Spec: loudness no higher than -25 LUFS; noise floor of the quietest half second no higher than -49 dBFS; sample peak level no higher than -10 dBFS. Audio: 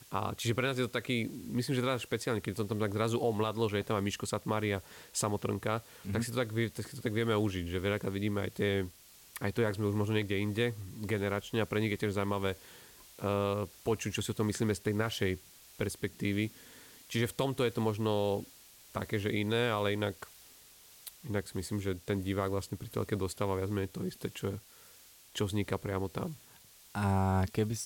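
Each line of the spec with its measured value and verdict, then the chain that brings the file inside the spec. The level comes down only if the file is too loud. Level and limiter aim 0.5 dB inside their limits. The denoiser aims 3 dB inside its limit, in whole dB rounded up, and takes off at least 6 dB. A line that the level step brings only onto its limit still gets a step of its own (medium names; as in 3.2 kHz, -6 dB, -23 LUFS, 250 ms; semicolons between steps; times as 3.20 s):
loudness -34.0 LUFS: pass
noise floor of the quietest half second -58 dBFS: pass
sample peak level -19.0 dBFS: pass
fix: none needed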